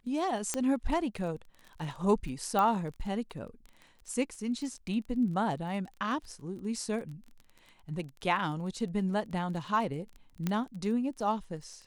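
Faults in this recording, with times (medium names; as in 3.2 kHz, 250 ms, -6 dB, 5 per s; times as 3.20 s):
crackle 22 per s -40 dBFS
0.54 s: pop -15 dBFS
2.59 s: pop -17 dBFS
10.47 s: pop -17 dBFS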